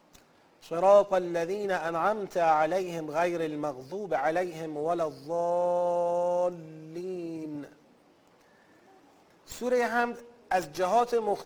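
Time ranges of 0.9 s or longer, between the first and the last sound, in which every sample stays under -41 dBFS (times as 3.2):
7.68–9.48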